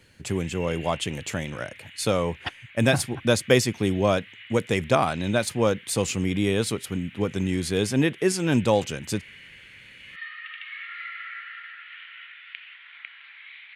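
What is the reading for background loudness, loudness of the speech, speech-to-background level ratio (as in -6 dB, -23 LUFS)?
-42.0 LUFS, -25.0 LUFS, 17.0 dB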